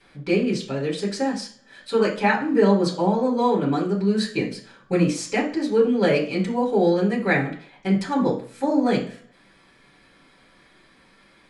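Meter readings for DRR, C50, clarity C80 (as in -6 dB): -8.5 dB, 9.5 dB, 14.0 dB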